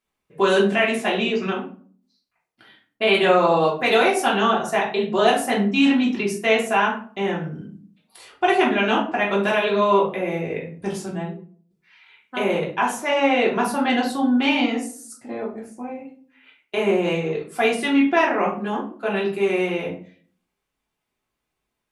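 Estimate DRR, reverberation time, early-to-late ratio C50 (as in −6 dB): −5.0 dB, 0.45 s, 7.0 dB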